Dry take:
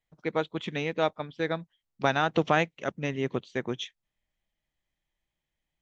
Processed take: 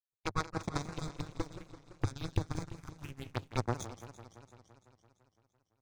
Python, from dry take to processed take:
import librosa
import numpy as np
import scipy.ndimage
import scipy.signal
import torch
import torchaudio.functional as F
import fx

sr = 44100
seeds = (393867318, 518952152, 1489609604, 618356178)

y = fx.lower_of_two(x, sr, delay_ms=0.81)
y = fx.recorder_agc(y, sr, target_db=-18.0, rise_db_per_s=18.0, max_gain_db=30)
y = fx.peak_eq(y, sr, hz=1100.0, db=-10.5, octaves=2.5, at=(0.82, 3.3))
y = fx.echo_feedback(y, sr, ms=209, feedback_pct=43, wet_db=-7)
y = 10.0 ** (-16.5 / 20.0) * np.tanh(y / 10.0 ** (-16.5 / 20.0))
y = fx.power_curve(y, sr, exponent=3.0)
y = fx.env_phaser(y, sr, low_hz=220.0, high_hz=2900.0, full_db=-42.0)
y = fx.peak_eq(y, sr, hz=99.0, db=14.5, octaves=0.67)
y = fx.echo_warbled(y, sr, ms=169, feedback_pct=71, rate_hz=2.8, cents=215, wet_db=-14)
y = F.gain(torch.from_numpy(y), 6.5).numpy()